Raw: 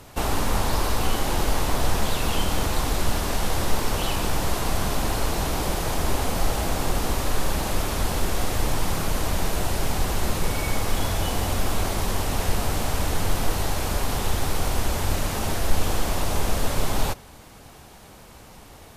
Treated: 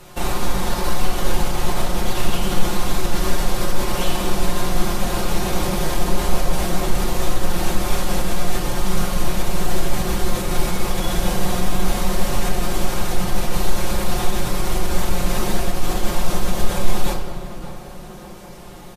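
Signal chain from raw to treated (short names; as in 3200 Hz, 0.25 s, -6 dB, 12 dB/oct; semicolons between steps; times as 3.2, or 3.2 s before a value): comb 5.6 ms, depth 67%; limiter -14 dBFS, peak gain reduction 11 dB; tape echo 0.577 s, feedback 72%, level -9 dB, low-pass 1500 Hz; on a send at -1 dB: reverb RT60 1.7 s, pre-delay 5 ms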